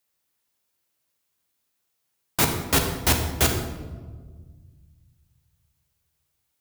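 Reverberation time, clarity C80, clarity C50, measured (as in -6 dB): 1.5 s, 7.5 dB, 5.5 dB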